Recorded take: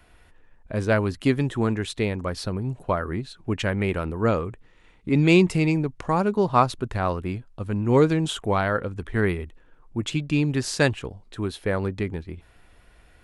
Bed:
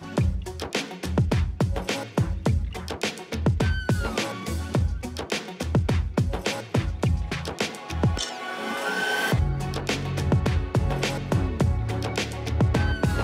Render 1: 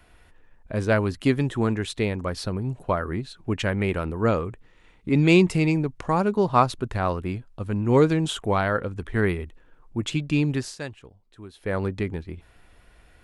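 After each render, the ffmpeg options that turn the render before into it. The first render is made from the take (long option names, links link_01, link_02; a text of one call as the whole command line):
ffmpeg -i in.wav -filter_complex "[0:a]asplit=3[link_01][link_02][link_03];[link_01]atrim=end=10.76,asetpts=PTS-STARTPTS,afade=type=out:start_time=10.52:duration=0.24:silence=0.199526[link_04];[link_02]atrim=start=10.76:end=11.54,asetpts=PTS-STARTPTS,volume=-14dB[link_05];[link_03]atrim=start=11.54,asetpts=PTS-STARTPTS,afade=type=in:duration=0.24:silence=0.199526[link_06];[link_04][link_05][link_06]concat=n=3:v=0:a=1" out.wav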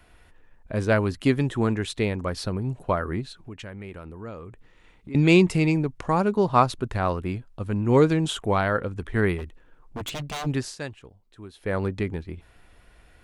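ffmpeg -i in.wav -filter_complex "[0:a]asettb=1/sr,asplit=3[link_01][link_02][link_03];[link_01]atrim=end=3.364[link_04];[link_02]atrim=start=3.36:end=5.15,asetpts=PTS-STARTPTS,afade=type=in:duration=0.004:curve=qsin,afade=type=out:start_time=1.786:duration=0.004:curve=qsin,acompressor=threshold=-42dB:ratio=2.5:attack=3.2:release=140:knee=1:detection=peak[link_05];[link_03]atrim=start=5.146[link_06];[link_04][link_05]acrossfade=duration=0.004:curve1=hsin:curve2=qsin[link_07];[link_07][link_06]acrossfade=duration=0.004:curve1=qsin:curve2=hsin,asplit=3[link_08][link_09][link_10];[link_08]afade=type=out:start_time=9.37:duration=0.02[link_11];[link_09]aeval=exprs='0.0473*(abs(mod(val(0)/0.0473+3,4)-2)-1)':channel_layout=same,afade=type=in:start_time=9.37:duration=0.02,afade=type=out:start_time=10.45:duration=0.02[link_12];[link_10]afade=type=in:start_time=10.45:duration=0.02[link_13];[link_11][link_12][link_13]amix=inputs=3:normalize=0" out.wav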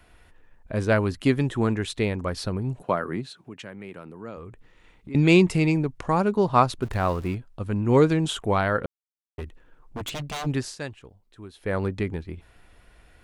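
ffmpeg -i in.wav -filter_complex "[0:a]asettb=1/sr,asplit=3[link_01][link_02][link_03];[link_01]atrim=end=2.824[link_04];[link_02]atrim=start=2.82:end=4.37,asetpts=PTS-STARTPTS,afade=type=in:duration=0.004:curve=qsin,afade=type=out:start_time=1.546:duration=0.004:curve=qsin,highpass=frequency=130:width=0.5412,highpass=frequency=130:width=1.3066[link_05];[link_03]atrim=start=4.366[link_06];[link_04][link_05]acrossfade=duration=0.004:curve1=hsin:curve2=qsin[link_07];[link_07][link_06]acrossfade=duration=0.004:curve1=qsin:curve2=hsin,asettb=1/sr,asplit=3[link_08][link_09][link_10];[link_08]atrim=end=6.824[link_11];[link_09]atrim=start=6.82:end=7.35,asetpts=PTS-STARTPTS,afade=type=in:duration=0.004:curve=qsin,afade=type=out:start_time=0.526:duration=0.004:curve=qsin,aeval=exprs='val(0)+0.5*0.0126*sgn(val(0))':channel_layout=same[link_12];[link_10]atrim=start=7.346[link_13];[link_11][link_12]acrossfade=duration=0.004:curve1=hsin:curve2=qsin[link_14];[link_14][link_13]acrossfade=duration=0.004:curve1=qsin:curve2=hsin,asplit=3[link_15][link_16][link_17];[link_15]atrim=end=8.86,asetpts=PTS-STARTPTS,afade=type=out:start_time=8.856:duration=0.004:curve=hsin[link_18];[link_16]atrim=start=8.86:end=9.38,asetpts=PTS-STARTPTS,volume=0[link_19];[link_17]atrim=start=9.38,asetpts=PTS-STARTPTS,afade=type=in:duration=0.004:curve=hsin[link_20];[link_18][link_19][link_20]concat=n=3:v=0:a=1" out.wav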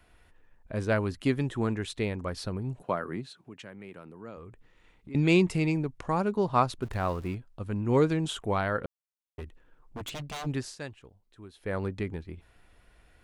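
ffmpeg -i in.wav -af "volume=-5.5dB" out.wav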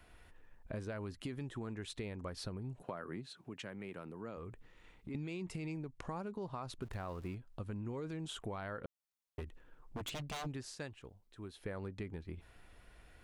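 ffmpeg -i in.wav -af "alimiter=limit=-21.5dB:level=0:latency=1:release=34,acompressor=threshold=-40dB:ratio=6" out.wav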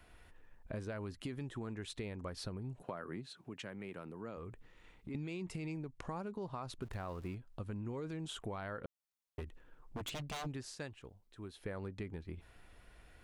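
ffmpeg -i in.wav -af anull out.wav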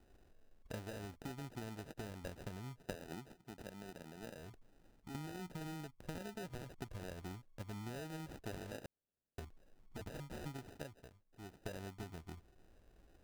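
ffmpeg -i in.wav -af "acrusher=samples=40:mix=1:aa=0.000001,aeval=exprs='0.0398*(cos(1*acos(clip(val(0)/0.0398,-1,1)))-cos(1*PI/2))+0.00631*(cos(3*acos(clip(val(0)/0.0398,-1,1)))-cos(3*PI/2))':channel_layout=same" out.wav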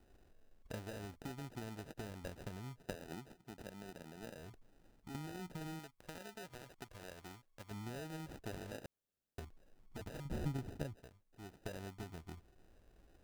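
ffmpeg -i in.wav -filter_complex "[0:a]asettb=1/sr,asplit=3[link_01][link_02][link_03];[link_01]atrim=end=5.794[link_04];[link_02]atrim=start=5.79:end=7.71,asetpts=PTS-STARTPTS,afade=type=in:duration=0.004:curve=qsin,afade=type=out:start_time=1.916:duration=0.004:curve=qsin,lowshelf=frequency=390:gain=-10[link_05];[link_03]atrim=start=7.706[link_06];[link_04][link_05]acrossfade=duration=0.004:curve1=hsin:curve2=qsin[link_07];[link_07][link_06]acrossfade=duration=0.004:curve1=qsin:curve2=hsin,asettb=1/sr,asplit=3[link_08][link_09][link_10];[link_08]atrim=end=10.254[link_11];[link_09]atrim=start=10.25:end=10.96,asetpts=PTS-STARTPTS,afade=type=in:duration=0.004:curve=qsin,afade=type=out:start_time=0.706:duration=0.004:curve=qsin,lowshelf=frequency=360:gain=10.5[link_12];[link_10]atrim=start=10.956[link_13];[link_11][link_12]acrossfade=duration=0.004:curve1=hsin:curve2=qsin[link_14];[link_14][link_13]acrossfade=duration=0.004:curve1=qsin:curve2=hsin" out.wav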